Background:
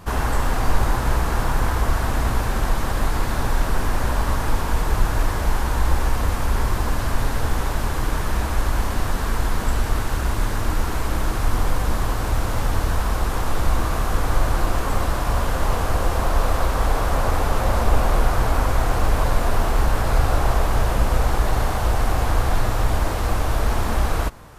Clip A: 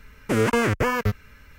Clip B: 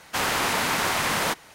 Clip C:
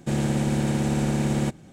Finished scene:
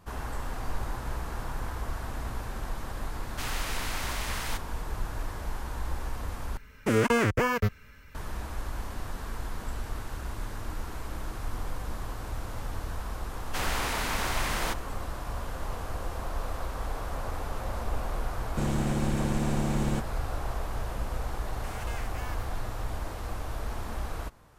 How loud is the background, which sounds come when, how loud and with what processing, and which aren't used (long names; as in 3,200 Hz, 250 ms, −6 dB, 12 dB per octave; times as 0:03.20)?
background −14 dB
0:03.24: mix in B −14 dB + tilt shelving filter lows −5 dB
0:06.57: overwrite with A −3 dB
0:13.40: mix in B −7.5 dB
0:18.50: mix in C −5.5 dB + dead-zone distortion −57.5 dBFS
0:21.34: mix in A −13 dB + guitar amp tone stack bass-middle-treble 10-0-10